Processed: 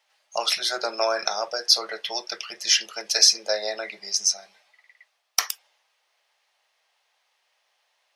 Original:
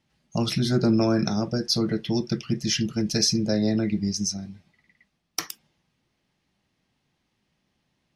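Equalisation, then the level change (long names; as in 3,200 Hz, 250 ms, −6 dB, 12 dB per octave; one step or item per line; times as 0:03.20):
inverse Chebyshev high-pass filter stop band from 290 Hz, stop band 40 dB
+7.0 dB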